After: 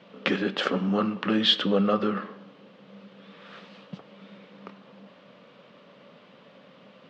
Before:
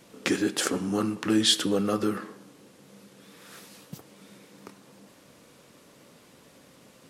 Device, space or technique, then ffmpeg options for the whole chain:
kitchen radio: -af "highpass=170,equalizer=frequency=190:width_type=q:width=4:gain=7,equalizer=frequency=320:width_type=q:width=4:gain=-7,equalizer=frequency=580:width_type=q:width=4:gain=6,equalizer=frequency=1200:width_type=q:width=4:gain=4,equalizer=frequency=3000:width_type=q:width=4:gain=4,lowpass=frequency=3800:width=0.5412,lowpass=frequency=3800:width=1.3066,highshelf=frequency=9600:gain=-3,volume=1.5dB"

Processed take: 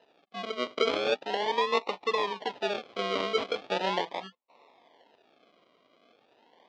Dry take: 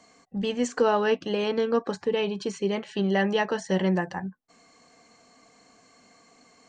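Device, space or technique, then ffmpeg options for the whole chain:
circuit-bent sampling toy: -af "acrusher=samples=39:mix=1:aa=0.000001:lfo=1:lforange=23.4:lforate=0.39,highpass=510,equalizer=frequency=950:width_type=q:width=4:gain=6,equalizer=frequency=1500:width_type=q:width=4:gain=-9,equalizer=frequency=3300:width_type=q:width=4:gain=4,lowpass=frequency=4400:width=0.5412,lowpass=frequency=4400:width=1.3066"

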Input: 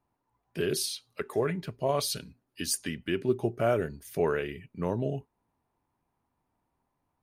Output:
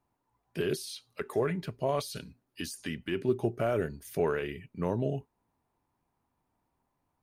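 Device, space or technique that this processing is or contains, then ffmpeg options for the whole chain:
de-esser from a sidechain: -filter_complex "[0:a]asplit=2[link_01][link_02];[link_02]highpass=frequency=4600:poles=1,apad=whole_len=318408[link_03];[link_01][link_03]sidechaincompress=threshold=-40dB:ratio=8:attack=3.3:release=43"

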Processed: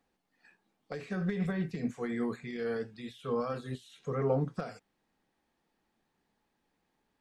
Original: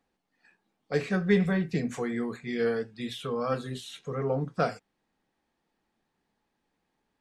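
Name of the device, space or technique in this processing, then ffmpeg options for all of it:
de-esser from a sidechain: -filter_complex "[0:a]asplit=2[link_01][link_02];[link_02]highpass=5400,apad=whole_len=317619[link_03];[link_01][link_03]sidechaincompress=threshold=-57dB:ratio=12:attack=1.3:release=89"

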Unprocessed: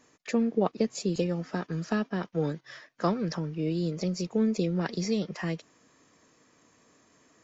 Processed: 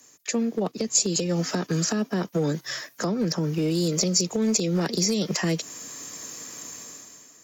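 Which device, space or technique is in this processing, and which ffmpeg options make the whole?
FM broadcast chain: -filter_complex "[0:a]highpass=61,dynaudnorm=framelen=130:gausssize=11:maxgain=16dB,acrossover=split=130|270|550[link_01][link_02][link_03][link_04];[link_01]acompressor=threshold=-38dB:ratio=4[link_05];[link_02]acompressor=threshold=-25dB:ratio=4[link_06];[link_03]acompressor=threshold=-24dB:ratio=4[link_07];[link_04]acompressor=threshold=-31dB:ratio=4[link_08];[link_05][link_06][link_07][link_08]amix=inputs=4:normalize=0,aemphasis=mode=production:type=50fm,alimiter=limit=-15.5dB:level=0:latency=1:release=188,asoftclip=type=hard:threshold=-17.5dB,lowpass=frequency=15000:width=0.5412,lowpass=frequency=15000:width=1.3066,aemphasis=mode=production:type=50fm,asettb=1/sr,asplit=3[link_09][link_10][link_11];[link_09]atrim=end=1.844[link_12];[link_10]atrim=start=1.84:end=3.87,asetpts=PTS-STARTPTS,afade=type=in:duration=0.004:curve=qsin,afade=type=out:start_time=2.026:duration=0.004:curve=qsin,equalizer=frequency=3400:width_type=o:width=1.7:gain=-3.5[link_13];[link_11]atrim=start=3.866[link_14];[link_12][link_13]acrossfade=duration=0.004:curve1=hsin:curve2=qsin[link_15];[link_15][link_14]acrossfade=duration=0.004:curve1=qsin:curve2=hsin"

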